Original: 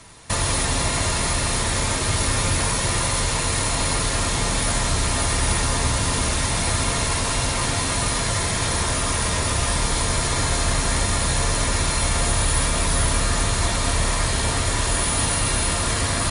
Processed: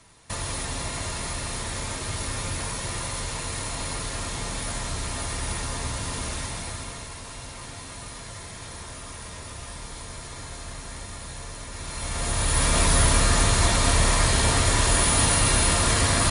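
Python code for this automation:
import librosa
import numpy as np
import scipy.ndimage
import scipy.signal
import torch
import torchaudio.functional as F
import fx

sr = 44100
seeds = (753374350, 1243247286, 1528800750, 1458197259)

y = fx.gain(x, sr, db=fx.line((6.38, -9.0), (7.12, -16.5), (11.7, -16.5), (12.25, -6.5), (12.77, 1.0)))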